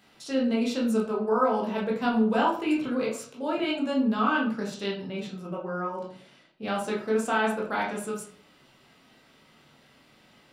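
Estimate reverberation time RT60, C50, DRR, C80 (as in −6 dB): 0.50 s, 6.0 dB, −4.0 dB, 10.0 dB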